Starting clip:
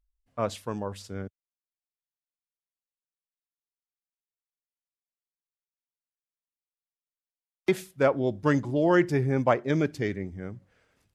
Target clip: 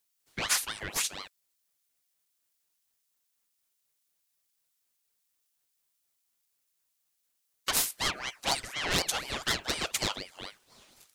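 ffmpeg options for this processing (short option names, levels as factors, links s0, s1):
-filter_complex "[0:a]asplit=2[s0][s1];[s1]highpass=f=720:p=1,volume=15.8,asoftclip=type=tanh:threshold=0.398[s2];[s0][s2]amix=inputs=2:normalize=0,lowpass=f=5600:p=1,volume=0.501,aderivative,aeval=exprs='val(0)*sin(2*PI*1800*n/s+1800*0.5/4.1*sin(2*PI*4.1*n/s))':c=same,volume=2.24"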